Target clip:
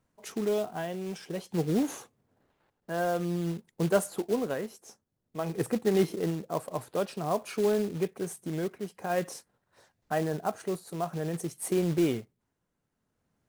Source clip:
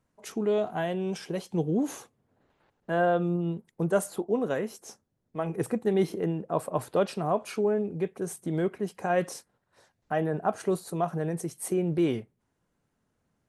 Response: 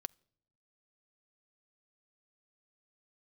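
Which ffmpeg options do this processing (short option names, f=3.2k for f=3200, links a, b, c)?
-af "tremolo=f=0.51:d=0.46,acrusher=bits=4:mode=log:mix=0:aa=0.000001"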